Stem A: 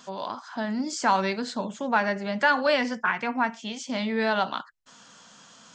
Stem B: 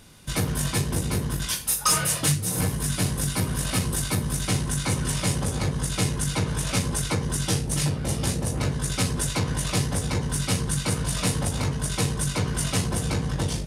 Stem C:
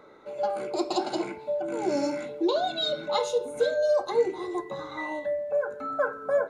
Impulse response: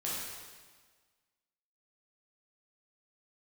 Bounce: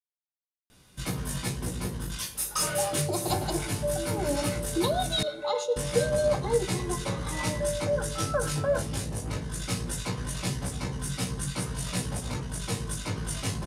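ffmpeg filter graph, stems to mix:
-filter_complex "[1:a]flanger=delay=15.5:depth=3.1:speed=0.19,adelay=700,volume=0.631,asplit=3[s0][s1][s2];[s0]atrim=end=5.23,asetpts=PTS-STARTPTS,afade=t=out:st=5.226:d=0.004:c=hsin[s3];[s1]atrim=start=5.23:end=5.76,asetpts=PTS-STARTPTS,volume=0[s4];[s2]atrim=start=5.76,asetpts=PTS-STARTPTS,afade=t=in:d=0.004:c=hsin[s5];[s3][s4][s5]concat=n=3:v=0:a=1,asplit=2[s6][s7];[s7]volume=0.0631[s8];[2:a]highpass=300,acrossover=split=640[s9][s10];[s9]aeval=exprs='val(0)*(1-0.7/2+0.7/2*cos(2*PI*6.6*n/s))':c=same[s11];[s10]aeval=exprs='val(0)*(1-0.7/2-0.7/2*cos(2*PI*6.6*n/s))':c=same[s12];[s11][s12]amix=inputs=2:normalize=0,adelay=2350,volume=1.19,asplit=2[s13][s14];[s14]volume=0.075[s15];[3:a]atrim=start_sample=2205[s16];[s8][s15]amix=inputs=2:normalize=0[s17];[s17][s16]afir=irnorm=-1:irlink=0[s18];[s6][s13][s18]amix=inputs=3:normalize=0"

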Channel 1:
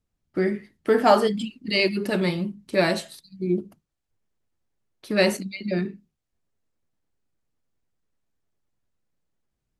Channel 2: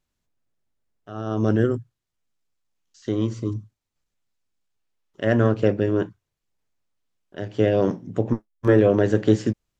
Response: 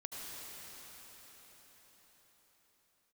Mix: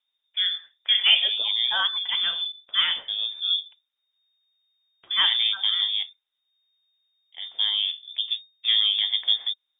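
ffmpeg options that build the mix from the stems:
-filter_complex "[0:a]volume=0.794[s0];[1:a]volume=0.531[s1];[s0][s1]amix=inputs=2:normalize=0,lowpass=f=3100:t=q:w=0.5098,lowpass=f=3100:t=q:w=0.6013,lowpass=f=3100:t=q:w=0.9,lowpass=f=3100:t=q:w=2.563,afreqshift=-3700,lowshelf=f=180:g=-4.5"

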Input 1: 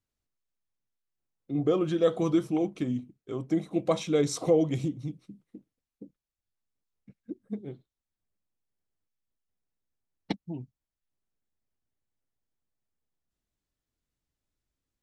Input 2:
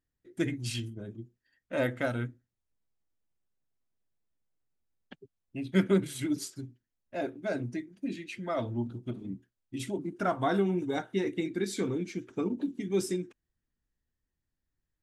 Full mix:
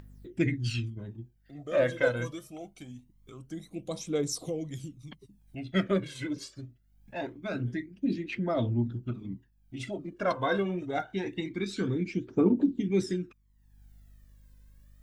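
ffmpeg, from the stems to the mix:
-filter_complex "[0:a]aemphasis=mode=production:type=75kf,aeval=exprs='val(0)+0.001*(sin(2*PI*50*n/s)+sin(2*PI*2*50*n/s)/2+sin(2*PI*3*50*n/s)/3+sin(2*PI*4*50*n/s)/4+sin(2*PI*5*50*n/s)/5)':c=same,volume=0.211[s0];[1:a]lowpass=4800,volume=1[s1];[s0][s1]amix=inputs=2:normalize=0,acompressor=mode=upward:threshold=0.00562:ratio=2.5,aphaser=in_gain=1:out_gain=1:delay=2:decay=0.64:speed=0.24:type=triangular"

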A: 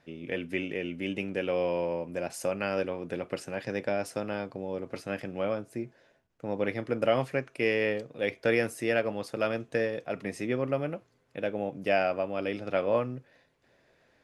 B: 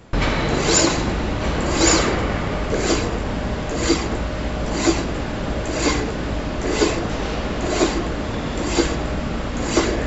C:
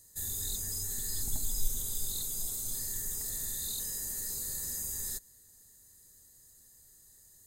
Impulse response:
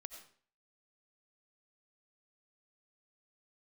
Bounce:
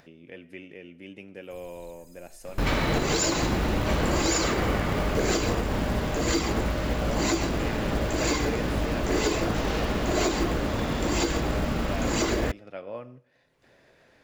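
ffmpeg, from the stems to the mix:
-filter_complex "[0:a]acompressor=mode=upward:threshold=0.0224:ratio=2.5,volume=0.224,asplit=2[s0][s1];[s1]volume=0.562[s2];[1:a]acrusher=bits=6:mode=log:mix=0:aa=0.000001,adelay=2450,volume=0.708,asplit=2[s3][s4];[s4]volume=0.0631[s5];[2:a]acrossover=split=2900[s6][s7];[s7]acompressor=threshold=0.00794:ratio=4:attack=1:release=60[s8];[s6][s8]amix=inputs=2:normalize=0,aphaser=in_gain=1:out_gain=1:delay=3:decay=0.75:speed=0.42:type=sinusoidal,adelay=1350,volume=0.112[s9];[3:a]atrim=start_sample=2205[s10];[s2][s5]amix=inputs=2:normalize=0[s11];[s11][s10]afir=irnorm=-1:irlink=0[s12];[s0][s3][s9][s12]amix=inputs=4:normalize=0,alimiter=limit=0.188:level=0:latency=1:release=113"

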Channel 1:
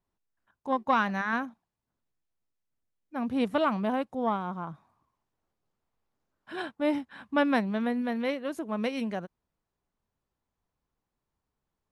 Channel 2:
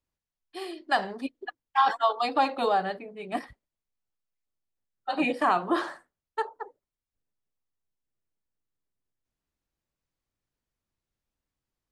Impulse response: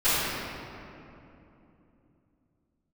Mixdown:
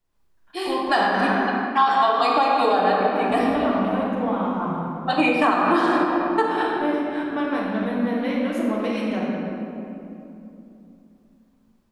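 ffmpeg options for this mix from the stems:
-filter_complex "[0:a]acompressor=threshold=0.02:ratio=6,volume=0.841,asplit=2[s0][s1];[s1]volume=0.316[s2];[1:a]volume=1.06,asplit=2[s3][s4];[s4]volume=0.211[s5];[2:a]atrim=start_sample=2205[s6];[s2][s5]amix=inputs=2:normalize=0[s7];[s7][s6]afir=irnorm=-1:irlink=0[s8];[s0][s3][s8]amix=inputs=3:normalize=0,dynaudnorm=f=110:g=3:m=2,alimiter=limit=0.355:level=0:latency=1:release=180"

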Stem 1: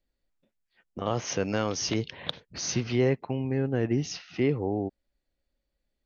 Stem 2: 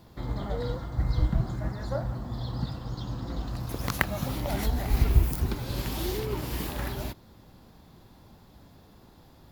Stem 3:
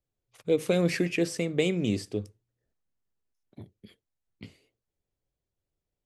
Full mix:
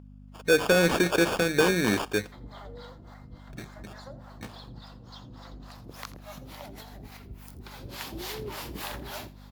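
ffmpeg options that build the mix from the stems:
-filter_complex "[1:a]acompressor=threshold=0.0398:ratio=6,acrossover=split=500[s0][s1];[s0]aeval=exprs='val(0)*(1-1/2+1/2*cos(2*PI*3.5*n/s))':c=same[s2];[s1]aeval=exprs='val(0)*(1-1/2-1/2*cos(2*PI*3.5*n/s))':c=same[s3];[s2][s3]amix=inputs=2:normalize=0,adelay=2150,volume=0.794,afade=t=in:st=7.64:d=0.57:silence=0.446684,asplit=2[s4][s5];[s5]volume=0.141[s6];[2:a]highshelf=f=8700:g=8.5,acrusher=samples=22:mix=1:aa=0.000001,volume=1.26[s7];[s6]aecho=0:1:84:1[s8];[s4][s7][s8]amix=inputs=3:normalize=0,aeval=exprs='val(0)+0.00708*(sin(2*PI*50*n/s)+sin(2*PI*2*50*n/s)/2+sin(2*PI*3*50*n/s)/3+sin(2*PI*4*50*n/s)/4+sin(2*PI*5*50*n/s)/5)':c=same,asplit=2[s9][s10];[s10]highpass=f=720:p=1,volume=5.01,asoftclip=type=tanh:threshold=0.316[s11];[s9][s11]amix=inputs=2:normalize=0,lowpass=f=7500:p=1,volume=0.501"

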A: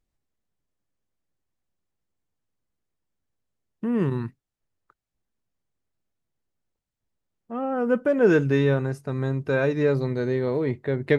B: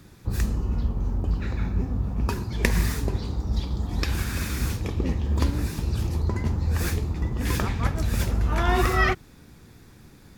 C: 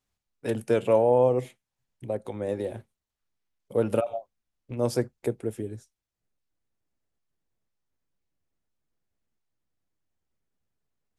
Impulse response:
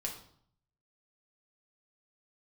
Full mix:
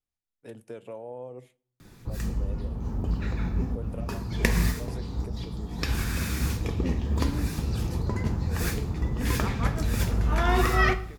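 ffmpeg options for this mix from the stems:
-filter_complex "[0:a]acompressor=threshold=0.0282:ratio=6,volume=0.141[s0];[1:a]adelay=1800,volume=0.596,asplit=2[s1][s2];[s2]volume=0.631[s3];[2:a]acompressor=threshold=0.0631:ratio=2.5,volume=0.188,asplit=3[s4][s5][s6];[s5]volume=0.106[s7];[s6]apad=whole_len=537114[s8];[s1][s8]sidechaincompress=threshold=0.00158:ratio=8:attack=16:release=148[s9];[3:a]atrim=start_sample=2205[s10];[s3][s7]amix=inputs=2:normalize=0[s11];[s11][s10]afir=irnorm=-1:irlink=0[s12];[s0][s9][s4][s12]amix=inputs=4:normalize=0"

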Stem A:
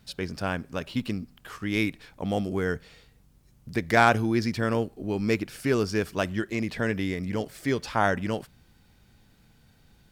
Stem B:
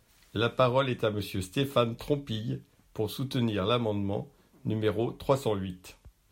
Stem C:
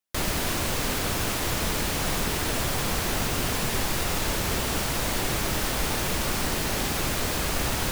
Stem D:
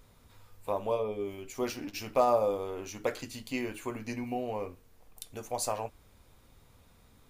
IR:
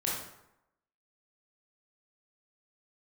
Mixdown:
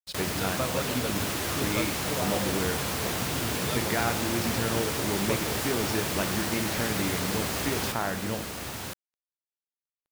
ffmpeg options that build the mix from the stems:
-filter_complex "[0:a]acompressor=threshold=0.0398:ratio=3,volume=0.794,asplit=2[s0][s1];[s1]volume=0.237[s2];[1:a]volume=0.376[s3];[2:a]highpass=f=70:w=0.5412,highpass=f=70:w=1.3066,volume=0.631,asplit=2[s4][s5];[s5]volume=0.562[s6];[3:a]volume=0.316[s7];[4:a]atrim=start_sample=2205[s8];[s2][s8]afir=irnorm=-1:irlink=0[s9];[s6]aecho=0:1:1014:1[s10];[s0][s3][s4][s7][s9][s10]amix=inputs=6:normalize=0,acrusher=bits=6:mix=0:aa=0.5"

